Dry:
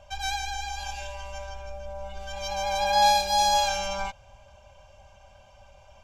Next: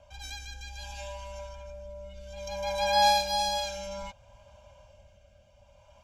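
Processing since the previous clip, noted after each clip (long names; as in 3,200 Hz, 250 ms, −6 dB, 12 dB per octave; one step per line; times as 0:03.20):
notch comb filter 390 Hz
rotating-speaker cabinet horn 0.6 Hz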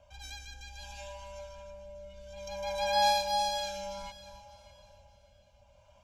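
delay that swaps between a low-pass and a high-pass 299 ms, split 1,200 Hz, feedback 54%, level −11.5 dB
level −4 dB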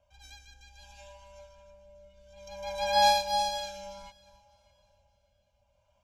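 expander for the loud parts 1.5 to 1, over −51 dBFS
level +4 dB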